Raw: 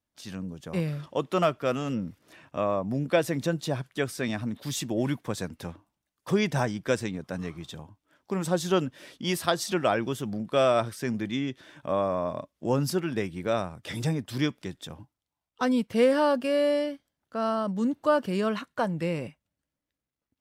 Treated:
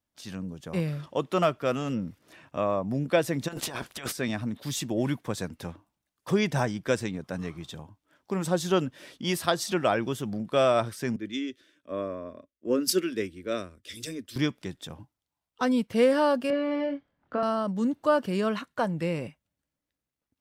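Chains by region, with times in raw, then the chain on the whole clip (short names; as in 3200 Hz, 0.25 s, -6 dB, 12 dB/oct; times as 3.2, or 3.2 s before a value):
3.47–4.11 spectral limiter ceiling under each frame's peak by 20 dB + negative-ratio compressor -37 dBFS
11.16–14.36 fixed phaser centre 340 Hz, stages 4 + three-band expander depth 100%
16.5–17.43 LPF 2100 Hz + doubler 25 ms -4 dB + three-band squash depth 70%
whole clip: dry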